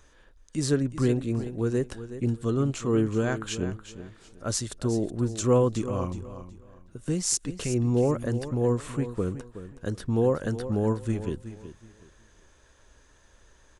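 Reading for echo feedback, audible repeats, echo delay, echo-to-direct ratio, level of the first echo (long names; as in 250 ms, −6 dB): 26%, 2, 371 ms, −12.0 dB, −12.5 dB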